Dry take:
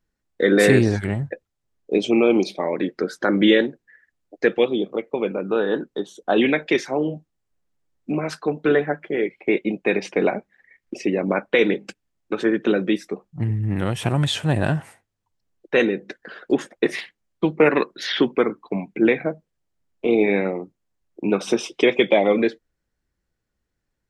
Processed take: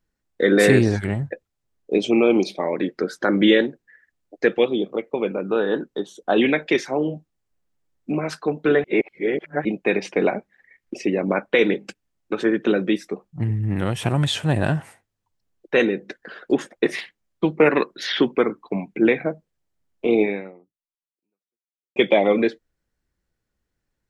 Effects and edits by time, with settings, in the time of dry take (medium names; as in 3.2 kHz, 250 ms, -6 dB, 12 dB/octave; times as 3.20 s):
8.84–9.65 s: reverse
20.21–21.96 s: fade out exponential